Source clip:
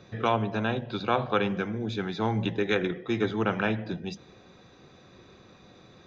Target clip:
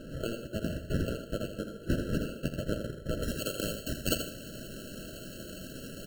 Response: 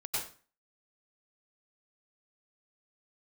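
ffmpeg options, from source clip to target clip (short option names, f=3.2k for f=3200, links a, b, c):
-af "highpass=1k,equalizer=f=5.6k:t=o:w=2.8:g=8,acompressor=threshold=-37dB:ratio=6,crystalizer=i=9.5:c=0,acrusher=samples=24:mix=1:aa=0.000001,asetnsamples=n=441:p=0,asendcmd='3.23 highshelf g 10',highshelf=f=2.6k:g=-4,aecho=1:1:44|82|121|154:0.15|0.398|0.158|0.141,afftfilt=real='re*eq(mod(floor(b*sr/1024/650),2),0)':imag='im*eq(mod(floor(b*sr/1024/650),2),0)':win_size=1024:overlap=0.75,volume=-2.5dB"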